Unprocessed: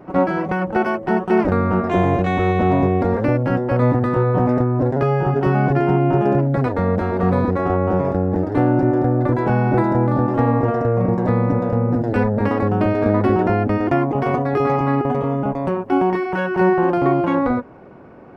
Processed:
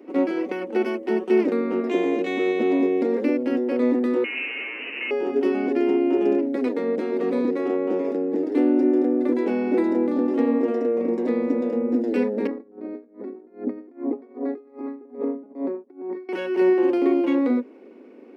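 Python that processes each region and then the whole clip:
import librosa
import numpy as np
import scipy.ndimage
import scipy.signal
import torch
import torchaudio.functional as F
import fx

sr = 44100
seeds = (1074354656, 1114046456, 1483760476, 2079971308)

y = fx.chain(x, sr, fx.delta_mod(bps=32000, step_db=-17.5),
    fx.highpass(hz=830.0, slope=24),
    fx.freq_invert(carrier_hz=3400), at=(4.24, 5.11))
y = fx.chain(y, sr, fx.over_compress(threshold_db=-21.0, ratio=-0.5),
    fx.moving_average(points=15),
    fx.tremolo_db(hz=2.5, depth_db=23), at=(12.47, 16.29))
y = scipy.signal.sosfilt(scipy.signal.ellip(4, 1.0, 40, 240.0, 'highpass', fs=sr, output='sos'), y)
y = fx.band_shelf(y, sr, hz=1000.0, db=-13.0, octaves=1.7)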